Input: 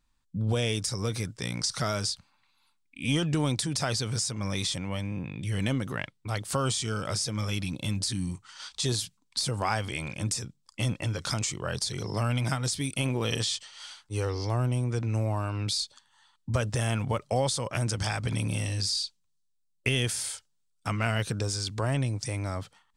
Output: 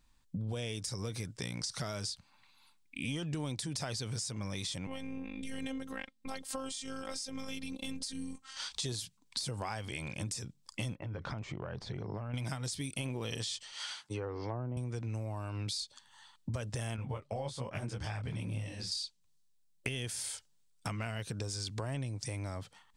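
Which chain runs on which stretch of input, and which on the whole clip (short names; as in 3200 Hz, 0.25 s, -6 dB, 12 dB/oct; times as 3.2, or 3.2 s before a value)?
4.87–8.57 robotiser 266 Hz + AM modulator 220 Hz, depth 15%
10.95–12.34 LPF 1600 Hz + compressor, threshold -33 dBFS
13.72–14.77 treble ducked by the level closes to 850 Hz, closed at -24 dBFS + dynamic EQ 1500 Hz, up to +6 dB, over -52 dBFS, Q 1.2 + HPF 130 Hz
16.96–18.92 tone controls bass +2 dB, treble -9 dB + detuned doubles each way 43 cents
whole clip: bell 1300 Hz -3.5 dB 0.39 oct; compressor 4:1, threshold -42 dBFS; gain +4.5 dB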